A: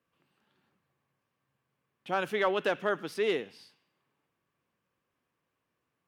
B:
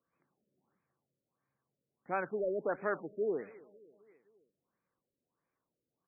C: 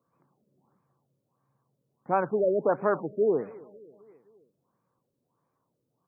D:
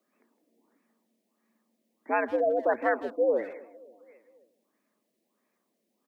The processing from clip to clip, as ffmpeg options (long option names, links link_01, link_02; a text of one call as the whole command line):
ffmpeg -i in.wav -af "equalizer=frequency=90:width_type=o:width=1.2:gain=-5,aecho=1:1:267|534|801|1068:0.0841|0.0471|0.0264|0.0148,afftfilt=real='re*lt(b*sr/1024,600*pow(2600/600,0.5+0.5*sin(2*PI*1.5*pts/sr)))':imag='im*lt(b*sr/1024,600*pow(2600/600,0.5+0.5*sin(2*PI*1.5*pts/sr)))':win_size=1024:overlap=0.75,volume=-4dB" out.wav
ffmpeg -i in.wav -af "equalizer=frequency=125:width_type=o:width=1:gain=12,equalizer=frequency=250:width_type=o:width=1:gain=4,equalizer=frequency=500:width_type=o:width=1:gain=4,equalizer=frequency=1000:width_type=o:width=1:gain=10,equalizer=frequency=2000:width_type=o:width=1:gain=-8,volume=3dB" out.wav
ffmpeg -i in.wav -filter_complex "[0:a]highshelf=frequency=1500:width_type=q:width=3:gain=7,afreqshift=91,asplit=2[link_01][link_02];[link_02]adelay=160,highpass=300,lowpass=3400,asoftclip=type=hard:threshold=-24dB,volume=-15dB[link_03];[link_01][link_03]amix=inputs=2:normalize=0" out.wav